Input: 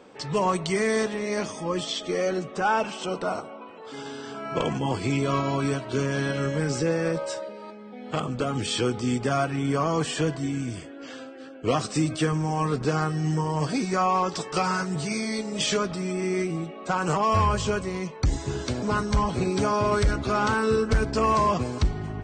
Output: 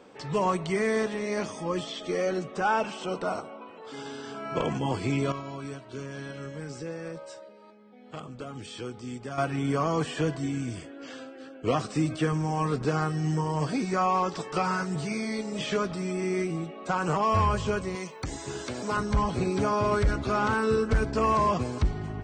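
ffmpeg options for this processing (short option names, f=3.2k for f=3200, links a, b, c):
-filter_complex "[0:a]asettb=1/sr,asplit=3[a][b][c];[a]atrim=end=17.954[d];[b]atrim=start=17.95:end=18.97,asetpts=PTS-STARTPTS,afade=t=in:d=0.004:c=qsin,afade=t=out:st=1.016:d=0.004:c=qsin,aemphasis=mode=production:type=bsi[e];[c]atrim=start=18.966[f];[d][e]acrossfade=d=0.004:c1=hsin:c2=qsin[g];[g][f]acrossfade=d=0.004:c1=qsin:c2=hsin,asplit=3[h][i][j];[h]atrim=end=5.322[k];[i]atrim=start=5.318:end=9.382,asetpts=PTS-STARTPTS,volume=-10dB[l];[j]atrim=start=9.378[m];[k][l]acrossfade=d=0.004:c1=hsin:c2=hsin[n];[n][m]acrossfade=d=0.004:c1=hsin:c2=hsin,acrossover=split=2900[o][p];[p]acompressor=threshold=-40dB:ratio=4:attack=1:release=60[q];[o][q]amix=inputs=2:normalize=0,volume=-2dB"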